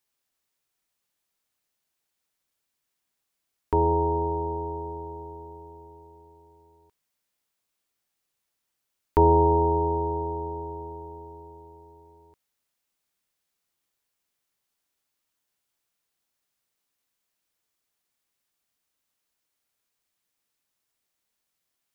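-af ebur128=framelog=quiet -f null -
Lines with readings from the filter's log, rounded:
Integrated loudness:
  I:         -25.0 LUFS
  Threshold: -38.1 LUFS
Loudness range:
  LRA:        18.6 LU
  Threshold: -50.2 LUFS
  LRA low:   -44.3 LUFS
  LRA high:  -25.8 LUFS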